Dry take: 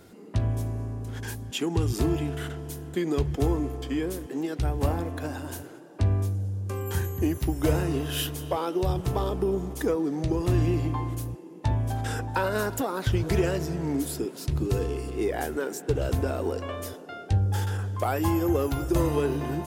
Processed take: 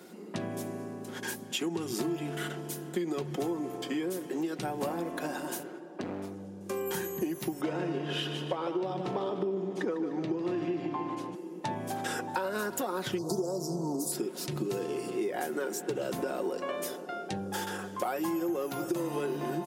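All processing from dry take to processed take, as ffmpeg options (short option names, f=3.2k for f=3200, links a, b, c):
-filter_complex "[0:a]asettb=1/sr,asplit=3[a][b][c];[a]atrim=end=5.634[d];[b]atrim=start=5.63:end=6.61,asetpts=PTS-STARTPTS,afade=t=in:d=0.004:c=qsin,afade=t=out:st=0.976:d=0.004:c=qsin,lowpass=f=2.7k:p=1,asoftclip=type=hard:threshold=-26dB[e];[c]atrim=start=6.606[f];[d][e]acrossfade=d=0.004:c1=hsin:c2=qsin[g];[g][f]acrossfade=d=0.004:c1=qsin:c2=hsin,asettb=1/sr,asplit=3[h][i][j];[h]atrim=end=7.614[k];[i]atrim=start=7.61:end=11.35,asetpts=PTS-STARTPTS,afade=t=in:d=0.004:c=qsin,afade=t=out:st=3.736:d=0.004:c=qsin,highpass=120,lowpass=3.7k,aecho=1:1:150|300|450|600|750:0.335|0.151|0.0678|0.0305|0.0137,atrim=end_sample=164934[l];[j]atrim=start=11.346[m];[k][l]acrossfade=d=0.004:c1=hsin:c2=qsin[n];[n][m]acrossfade=d=0.004:c1=qsin:c2=hsin,asettb=1/sr,asplit=3[o][p][q];[o]atrim=end=13.184[r];[p]atrim=start=13.18:end=14.12,asetpts=PTS-STARTPTS,afade=t=in:d=0.004:c=qsin,afade=t=out:st=0.936:d=0.004:c=qsin,asuperstop=centerf=2300:order=8:qfactor=0.61,equalizer=f=3.7k:w=0.35:g=7[s];[q]atrim=start=14.116[t];[r][s]acrossfade=d=0.004:c1=hsin:c2=qsin[u];[u][t]acrossfade=d=0.004:c1=qsin:c2=hsin,highpass=f=180:w=0.5412,highpass=f=180:w=1.3066,aecho=1:1:5.5:0.44,acompressor=threshold=-31dB:ratio=5,volume=1.5dB"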